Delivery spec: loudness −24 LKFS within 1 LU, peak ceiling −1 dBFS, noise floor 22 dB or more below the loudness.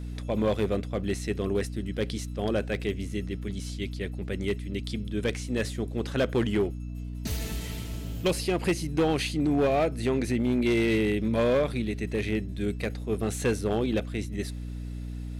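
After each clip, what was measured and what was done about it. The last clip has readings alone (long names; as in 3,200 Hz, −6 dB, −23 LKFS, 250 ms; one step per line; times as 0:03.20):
share of clipped samples 1.2%; peaks flattened at −19.0 dBFS; mains hum 60 Hz; hum harmonics up to 300 Hz; level of the hum −33 dBFS; integrated loudness −29.0 LKFS; sample peak −19.0 dBFS; target loudness −24.0 LKFS
→ clipped peaks rebuilt −19 dBFS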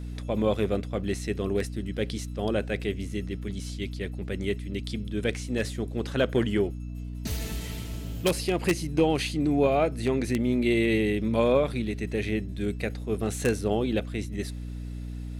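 share of clipped samples 0.0%; mains hum 60 Hz; hum harmonics up to 300 Hz; level of the hum −33 dBFS
→ mains-hum notches 60/120/180/240/300 Hz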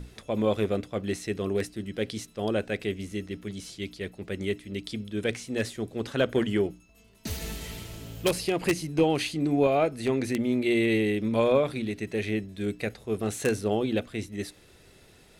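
mains hum none found; integrated loudness −29.0 LKFS; sample peak −9.0 dBFS; target loudness −24.0 LKFS
→ level +5 dB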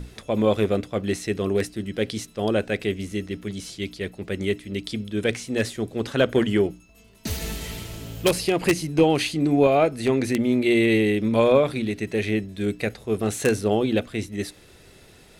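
integrated loudness −24.0 LKFS; sample peak −4.0 dBFS; background noise floor −51 dBFS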